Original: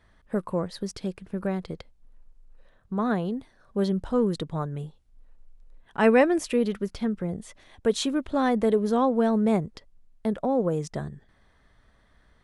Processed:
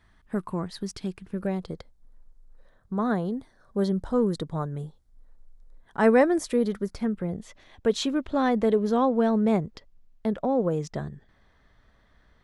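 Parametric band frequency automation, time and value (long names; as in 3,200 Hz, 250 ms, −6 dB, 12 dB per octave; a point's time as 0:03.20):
parametric band −11.5 dB 0.4 octaves
0:01.25 530 Hz
0:01.72 2,700 Hz
0:06.91 2,700 Hz
0:07.35 9,300 Hz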